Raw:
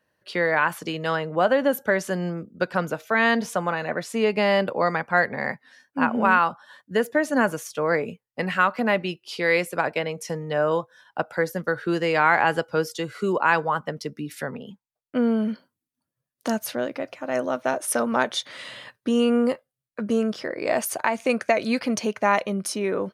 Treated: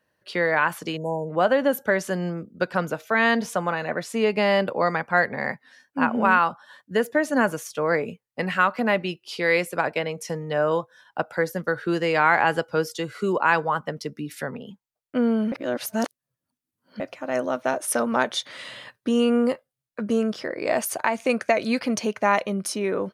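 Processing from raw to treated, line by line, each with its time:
0.97–1.3 spectral delete 1000–5800 Hz
15.52–17 reverse

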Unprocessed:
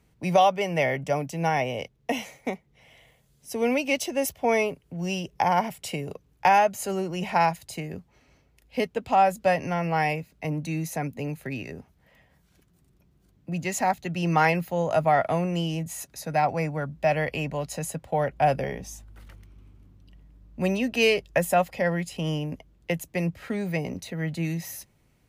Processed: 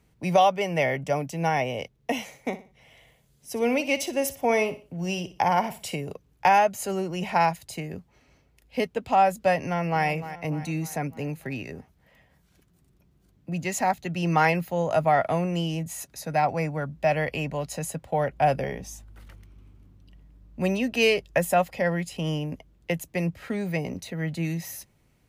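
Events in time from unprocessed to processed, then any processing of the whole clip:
2.22–5.95 feedback echo 60 ms, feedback 33%, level -14 dB
9.61–10.05 echo throw 0.3 s, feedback 55%, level -13 dB

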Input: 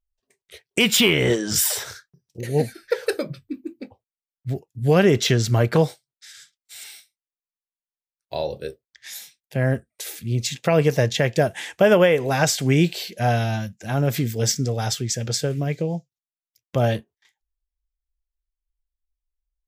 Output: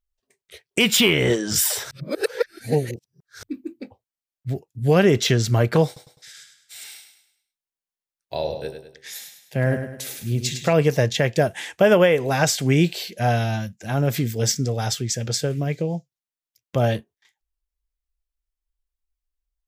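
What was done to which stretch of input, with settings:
1.91–3.43 reverse
5.86–10.73 feedback echo 0.103 s, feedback 42%, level -8 dB

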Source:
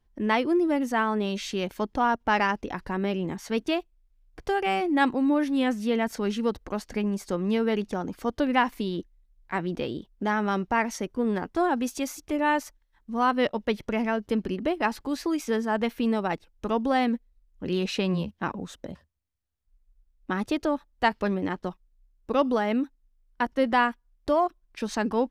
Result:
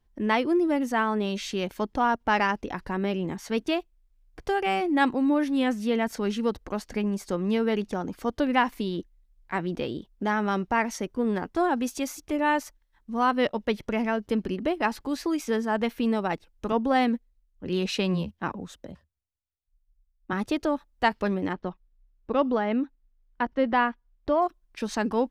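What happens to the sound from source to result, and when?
16.72–20.33 three-band expander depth 40%
21.53–24.42 air absorption 190 m

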